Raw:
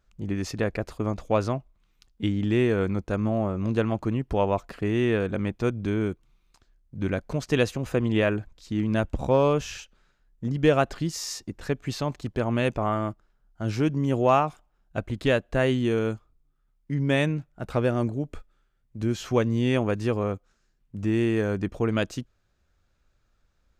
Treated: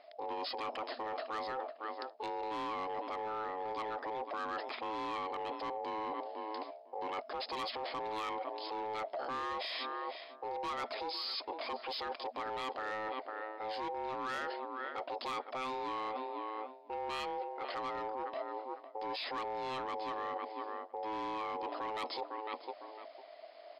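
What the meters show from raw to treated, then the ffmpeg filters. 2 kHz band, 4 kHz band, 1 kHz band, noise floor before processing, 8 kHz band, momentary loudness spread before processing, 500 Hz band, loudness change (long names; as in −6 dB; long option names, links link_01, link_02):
−10.5 dB, −4.5 dB, −3.5 dB, −69 dBFS, below −20 dB, 10 LU, −14.5 dB, −13.0 dB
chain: -filter_complex "[0:a]aeval=exprs='val(0)*sin(2*PI*650*n/s)':channel_layout=same,asplit=2[link_01][link_02];[link_02]asoftclip=type=hard:threshold=-25.5dB,volume=-9dB[link_03];[link_01][link_03]amix=inputs=2:normalize=0,aemphasis=mode=production:type=bsi,asplit=2[link_04][link_05];[link_05]adelay=504,lowpass=frequency=2000:poles=1,volume=-21dB,asplit=2[link_06][link_07];[link_07]adelay=504,lowpass=frequency=2000:poles=1,volume=0.16[link_08];[link_04][link_06][link_08]amix=inputs=3:normalize=0,afftfilt=real='re*between(b*sr/4096,240,5200)':imag='im*between(b*sr/4096,240,5200)':win_size=4096:overlap=0.75,asoftclip=type=tanh:threshold=-21.5dB,alimiter=level_in=9.5dB:limit=-24dB:level=0:latency=1:release=19,volume=-9.5dB,areverse,acompressor=threshold=-53dB:ratio=5,areverse,volume=14.5dB"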